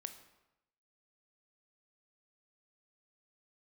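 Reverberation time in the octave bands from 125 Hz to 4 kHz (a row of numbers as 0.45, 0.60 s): 0.95, 0.85, 0.90, 0.90, 0.80, 0.70 s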